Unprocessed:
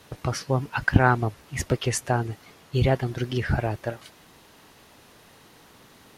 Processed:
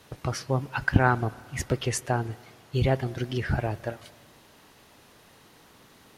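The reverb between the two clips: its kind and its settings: spring tank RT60 2 s, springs 30/53 ms, chirp 75 ms, DRR 20 dB; gain -2.5 dB

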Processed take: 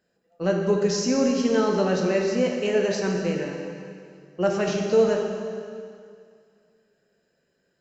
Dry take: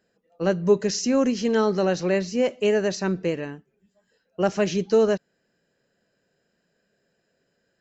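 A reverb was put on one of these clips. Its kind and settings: plate-style reverb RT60 2.3 s, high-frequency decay 0.9×, DRR 0 dB; gain -3 dB

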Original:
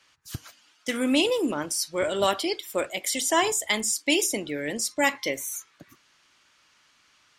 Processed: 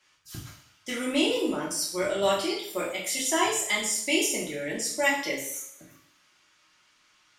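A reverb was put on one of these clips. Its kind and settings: two-slope reverb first 0.61 s, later 1.6 s, from -26 dB, DRR -5 dB; gain -7.5 dB

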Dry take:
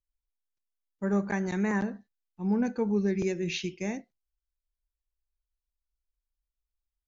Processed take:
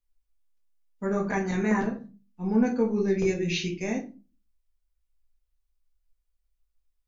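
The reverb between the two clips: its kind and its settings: shoebox room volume 130 m³, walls furnished, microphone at 1.8 m

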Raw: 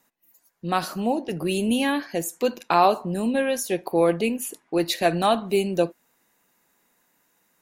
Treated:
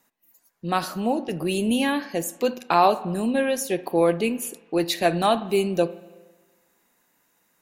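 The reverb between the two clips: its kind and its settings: spring tank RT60 1.3 s, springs 33/41 ms, chirp 25 ms, DRR 16.5 dB

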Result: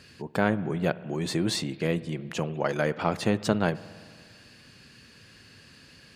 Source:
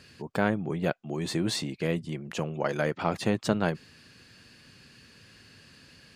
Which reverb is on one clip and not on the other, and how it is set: spring tank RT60 2 s, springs 57 ms, chirp 60 ms, DRR 17 dB; gain +1.5 dB

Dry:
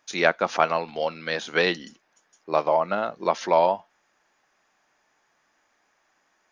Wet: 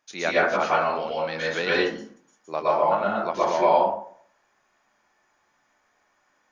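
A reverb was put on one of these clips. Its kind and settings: plate-style reverb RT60 0.56 s, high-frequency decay 0.45×, pre-delay 0.105 s, DRR -7 dB; gain -7 dB

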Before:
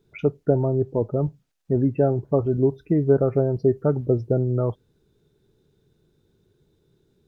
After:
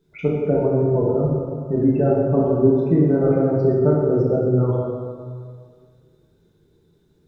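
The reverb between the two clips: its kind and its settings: plate-style reverb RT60 2 s, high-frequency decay 0.55×, DRR -5.5 dB; gain -2.5 dB

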